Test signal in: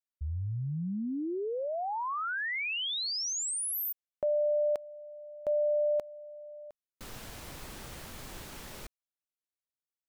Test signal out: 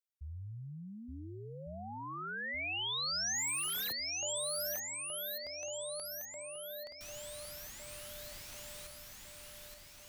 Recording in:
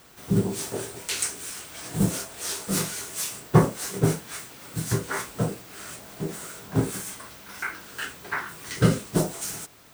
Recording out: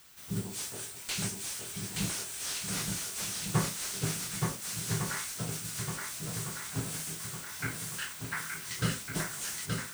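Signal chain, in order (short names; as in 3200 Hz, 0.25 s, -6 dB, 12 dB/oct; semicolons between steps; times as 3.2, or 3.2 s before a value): passive tone stack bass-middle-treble 5-5-5; swung echo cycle 1.455 s, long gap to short 1.5:1, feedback 46%, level -3.5 dB; slew limiter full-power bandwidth 89 Hz; gain +4 dB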